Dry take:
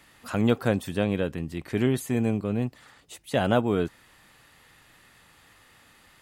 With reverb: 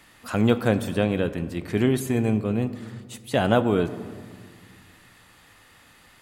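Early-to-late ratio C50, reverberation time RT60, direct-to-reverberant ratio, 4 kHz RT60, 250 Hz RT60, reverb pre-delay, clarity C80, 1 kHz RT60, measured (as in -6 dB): 13.5 dB, 1.9 s, 11.5 dB, 1.0 s, 2.4 s, 3 ms, 14.5 dB, 1.8 s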